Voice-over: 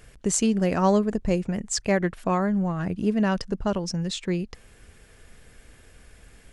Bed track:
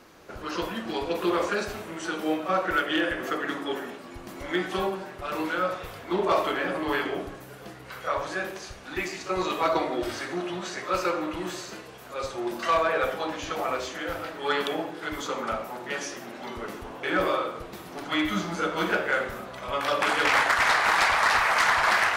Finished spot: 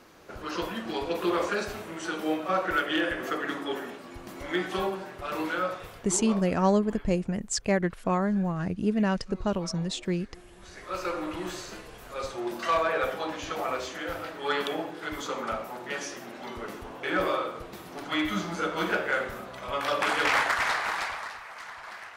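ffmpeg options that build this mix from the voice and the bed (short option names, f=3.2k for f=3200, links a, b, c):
-filter_complex "[0:a]adelay=5800,volume=-2.5dB[a];[1:a]volume=18.5dB,afade=t=out:st=5.53:d=0.94:silence=0.0944061,afade=t=in:st=10.56:d=0.77:silence=0.1,afade=t=out:st=20.31:d=1.05:silence=0.11885[b];[a][b]amix=inputs=2:normalize=0"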